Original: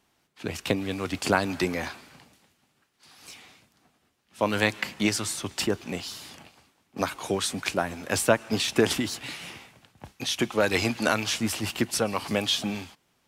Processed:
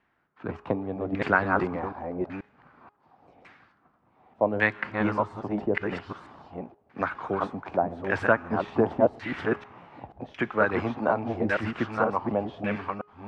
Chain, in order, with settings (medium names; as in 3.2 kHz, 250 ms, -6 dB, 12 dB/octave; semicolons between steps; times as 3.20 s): chunks repeated in reverse 482 ms, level -2.5 dB; de-hum 415.6 Hz, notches 39; LFO low-pass saw down 0.87 Hz 610–1900 Hz; trim -3 dB